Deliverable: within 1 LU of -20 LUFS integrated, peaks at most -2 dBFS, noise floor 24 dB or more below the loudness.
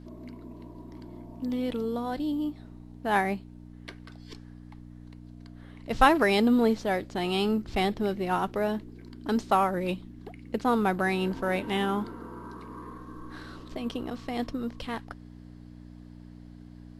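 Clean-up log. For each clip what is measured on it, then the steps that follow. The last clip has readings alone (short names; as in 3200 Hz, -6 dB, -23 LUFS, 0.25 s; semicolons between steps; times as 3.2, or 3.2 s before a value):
hum 60 Hz; harmonics up to 300 Hz; hum level -45 dBFS; loudness -28.0 LUFS; peak -6.5 dBFS; loudness target -20.0 LUFS
-> de-hum 60 Hz, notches 5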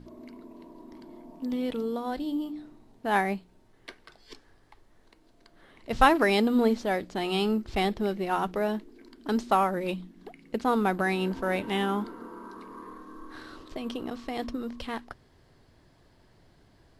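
hum none; loudness -28.5 LUFS; peak -6.5 dBFS; loudness target -20.0 LUFS
-> gain +8.5 dB; limiter -2 dBFS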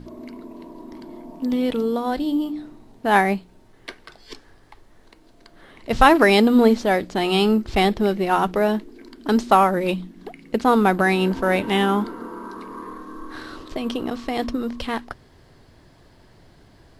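loudness -20.0 LUFS; peak -2.0 dBFS; noise floor -53 dBFS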